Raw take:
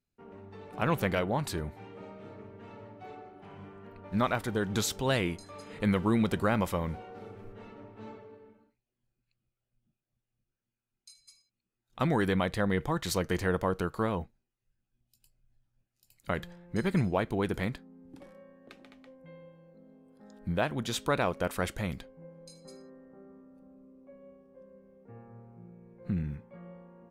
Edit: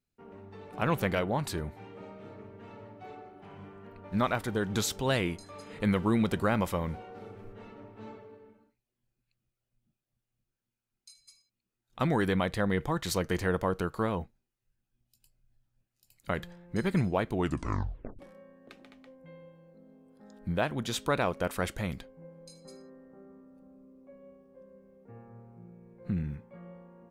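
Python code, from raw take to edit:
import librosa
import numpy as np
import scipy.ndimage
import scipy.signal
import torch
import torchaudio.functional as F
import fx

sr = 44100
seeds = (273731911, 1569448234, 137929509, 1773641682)

y = fx.edit(x, sr, fx.tape_stop(start_s=17.33, length_s=0.86), tone=tone)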